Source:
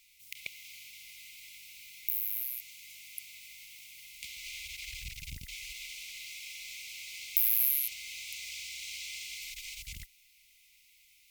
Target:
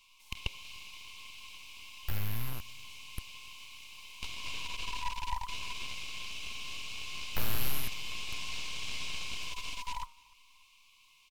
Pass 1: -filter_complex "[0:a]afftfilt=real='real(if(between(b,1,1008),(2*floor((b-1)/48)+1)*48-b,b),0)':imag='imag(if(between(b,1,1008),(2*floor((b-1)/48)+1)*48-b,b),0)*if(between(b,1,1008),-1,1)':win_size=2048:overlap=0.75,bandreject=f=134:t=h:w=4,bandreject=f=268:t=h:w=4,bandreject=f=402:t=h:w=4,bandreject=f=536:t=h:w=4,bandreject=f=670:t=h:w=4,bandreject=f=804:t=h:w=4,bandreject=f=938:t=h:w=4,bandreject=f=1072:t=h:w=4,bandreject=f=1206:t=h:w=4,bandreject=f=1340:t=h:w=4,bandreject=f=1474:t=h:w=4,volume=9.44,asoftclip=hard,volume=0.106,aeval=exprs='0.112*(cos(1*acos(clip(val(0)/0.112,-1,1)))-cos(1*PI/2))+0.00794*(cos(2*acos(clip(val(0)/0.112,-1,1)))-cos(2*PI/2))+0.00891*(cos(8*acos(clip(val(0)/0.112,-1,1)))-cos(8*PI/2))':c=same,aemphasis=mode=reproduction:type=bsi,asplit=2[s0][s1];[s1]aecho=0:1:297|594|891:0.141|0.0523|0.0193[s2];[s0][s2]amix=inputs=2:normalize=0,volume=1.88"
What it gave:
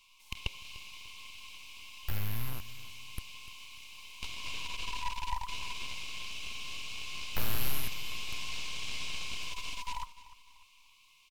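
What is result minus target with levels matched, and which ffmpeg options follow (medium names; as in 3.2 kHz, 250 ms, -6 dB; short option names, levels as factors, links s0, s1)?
echo-to-direct +9 dB
-filter_complex "[0:a]afftfilt=real='real(if(between(b,1,1008),(2*floor((b-1)/48)+1)*48-b,b),0)':imag='imag(if(between(b,1,1008),(2*floor((b-1)/48)+1)*48-b,b),0)*if(between(b,1,1008),-1,1)':win_size=2048:overlap=0.75,bandreject=f=134:t=h:w=4,bandreject=f=268:t=h:w=4,bandreject=f=402:t=h:w=4,bandreject=f=536:t=h:w=4,bandreject=f=670:t=h:w=4,bandreject=f=804:t=h:w=4,bandreject=f=938:t=h:w=4,bandreject=f=1072:t=h:w=4,bandreject=f=1206:t=h:w=4,bandreject=f=1340:t=h:w=4,bandreject=f=1474:t=h:w=4,volume=9.44,asoftclip=hard,volume=0.106,aeval=exprs='0.112*(cos(1*acos(clip(val(0)/0.112,-1,1)))-cos(1*PI/2))+0.00794*(cos(2*acos(clip(val(0)/0.112,-1,1)))-cos(2*PI/2))+0.00891*(cos(8*acos(clip(val(0)/0.112,-1,1)))-cos(8*PI/2))':c=same,aemphasis=mode=reproduction:type=bsi,asplit=2[s0][s1];[s1]aecho=0:1:297|594:0.0501|0.0185[s2];[s0][s2]amix=inputs=2:normalize=0,volume=1.88"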